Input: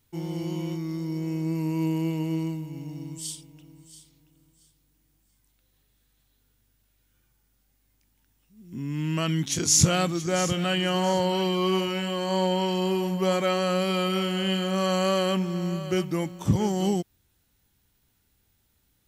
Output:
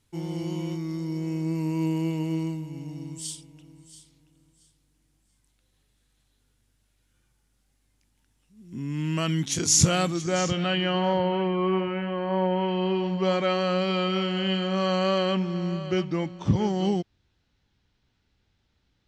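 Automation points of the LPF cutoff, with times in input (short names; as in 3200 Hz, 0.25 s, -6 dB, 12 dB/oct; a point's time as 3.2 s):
LPF 24 dB/oct
10.08 s 11000 Hz
10.76 s 4500 Hz
11.48 s 2300 Hz
12.5 s 2300 Hz
13.27 s 5200 Hz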